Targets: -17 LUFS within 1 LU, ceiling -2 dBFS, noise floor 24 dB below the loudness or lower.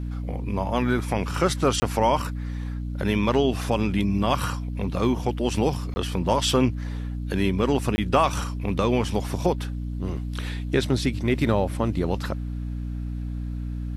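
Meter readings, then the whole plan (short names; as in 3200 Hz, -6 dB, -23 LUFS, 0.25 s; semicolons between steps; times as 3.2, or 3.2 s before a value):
dropouts 3; longest dropout 20 ms; hum 60 Hz; harmonics up to 300 Hz; hum level -27 dBFS; loudness -25.5 LUFS; peak -6.0 dBFS; loudness target -17.0 LUFS
-> interpolate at 1.8/5.94/7.96, 20 ms; notches 60/120/180/240/300 Hz; gain +8.5 dB; limiter -2 dBFS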